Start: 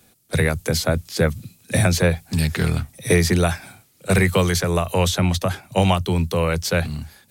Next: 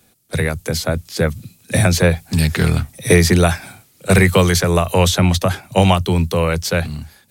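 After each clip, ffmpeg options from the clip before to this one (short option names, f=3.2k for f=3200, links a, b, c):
-af "dynaudnorm=f=690:g=5:m=11.5dB"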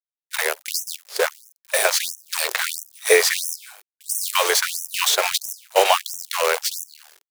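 -af "acrusher=bits=4:dc=4:mix=0:aa=0.000001,afftfilt=real='re*gte(b*sr/1024,350*pow(5600/350,0.5+0.5*sin(2*PI*1.5*pts/sr)))':imag='im*gte(b*sr/1024,350*pow(5600/350,0.5+0.5*sin(2*PI*1.5*pts/sr)))':win_size=1024:overlap=0.75"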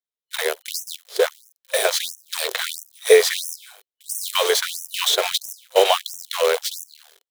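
-af "superequalizer=7b=2.51:8b=1.58:13b=2,volume=-3.5dB"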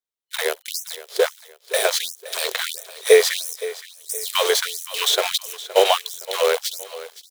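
-af "aecho=1:1:518|1036|1554:0.15|0.0524|0.0183"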